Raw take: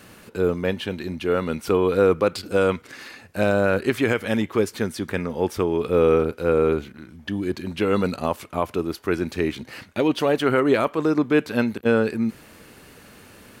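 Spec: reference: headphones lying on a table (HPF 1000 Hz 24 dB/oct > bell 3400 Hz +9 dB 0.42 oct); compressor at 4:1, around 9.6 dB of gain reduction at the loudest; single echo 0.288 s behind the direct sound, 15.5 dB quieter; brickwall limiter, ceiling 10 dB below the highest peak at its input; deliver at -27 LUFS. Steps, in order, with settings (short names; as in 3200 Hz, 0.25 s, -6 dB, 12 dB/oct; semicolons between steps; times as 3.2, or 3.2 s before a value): compressor 4:1, threshold -25 dBFS; limiter -22.5 dBFS; HPF 1000 Hz 24 dB/oct; bell 3400 Hz +9 dB 0.42 oct; echo 0.288 s -15.5 dB; gain +12 dB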